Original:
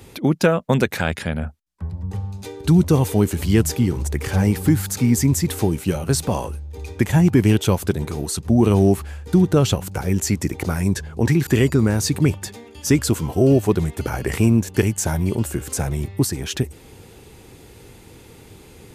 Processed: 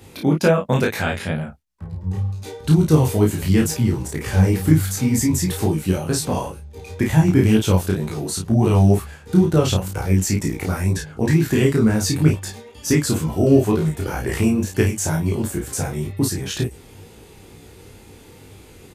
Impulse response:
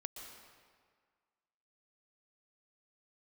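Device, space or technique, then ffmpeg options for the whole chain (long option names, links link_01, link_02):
double-tracked vocal: -filter_complex "[0:a]asplit=2[link_01][link_02];[link_02]adelay=32,volume=-3dB[link_03];[link_01][link_03]amix=inputs=2:normalize=0,flanger=delay=18:depth=4:speed=2.1,volume=1.5dB"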